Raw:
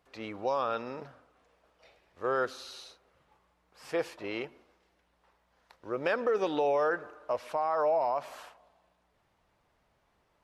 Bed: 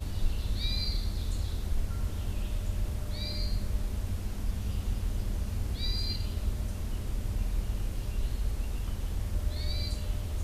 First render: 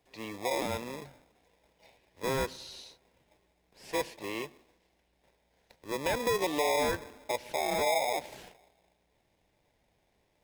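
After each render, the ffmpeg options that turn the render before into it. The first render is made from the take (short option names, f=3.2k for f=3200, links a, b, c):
-filter_complex "[0:a]acrossover=split=200|1600[a][b][c];[b]acrusher=samples=30:mix=1:aa=0.000001[d];[a][d][c]amix=inputs=3:normalize=0,asoftclip=type=tanh:threshold=-19dB"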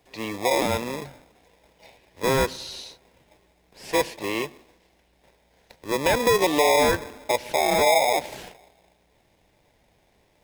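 -af "volume=9.5dB"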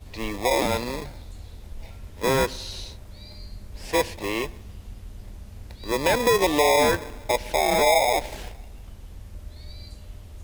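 -filter_complex "[1:a]volume=-8.5dB[a];[0:a][a]amix=inputs=2:normalize=0"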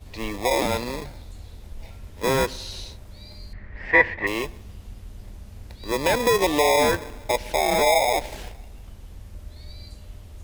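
-filter_complex "[0:a]asettb=1/sr,asplit=3[a][b][c];[a]atrim=end=3.534[d];[b]atrim=start=3.53:end=4.27,asetpts=PTS-STARTPTS,afade=t=in:d=0.004:c=qsin,afade=t=out:st=0.736:d=0.004:c=qsin,lowpass=f=1.9k:t=q:w=9.4[e];[c]atrim=start=4.266[f];[d][e]acrossfade=d=0.004:c1=hsin:c2=qsin[g];[g][f]acrossfade=d=0.004:c1=qsin:c2=hsin"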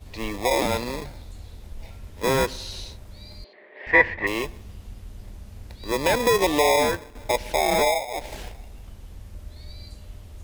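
-filter_complex "[0:a]asettb=1/sr,asplit=3[a][b][c];[a]atrim=end=3.444[d];[b]atrim=start=3.44:end=3.87,asetpts=PTS-STARTPTS,afade=t=in:d=0.004:c=qsin,afade=t=out:st=0.426:d=0.004:c=qsin,highpass=f=360:w=0.5412,highpass=f=360:w=1.3066,equalizer=f=390:t=q:w=4:g=9,equalizer=f=610:t=q:w=4:g=7,equalizer=f=1.4k:t=q:w=4:g=-8,equalizer=f=3.5k:t=q:w=4:g=5,lowpass=f=3.9k:w=0.5412,lowpass=f=3.9k:w=1.3066[e];[c]atrim=start=3.866[f];[d][e]acrossfade=d=0.004:c1=hsin:c2=qsin[g];[g][f]acrossfade=d=0.004:c1=qsin:c2=hsin,asplit=4[h][i][j][k];[h]atrim=end=7.15,asetpts=PTS-STARTPTS,afade=t=out:st=6.72:d=0.43:silence=0.281838[l];[i]atrim=start=7.15:end=8.06,asetpts=PTS-STARTPTS,afade=t=in:d=0.004:c=hsin:silence=0.281838,afade=t=out:st=0.66:d=0.25:silence=0.188365[m];[j]atrim=start=8.06:end=8.08,asetpts=PTS-STARTPTS,volume=-14.5dB[n];[k]atrim=start=8.08,asetpts=PTS-STARTPTS,afade=t=in:d=0.25:silence=0.188365[o];[l][m][n][o]concat=n=4:v=0:a=1"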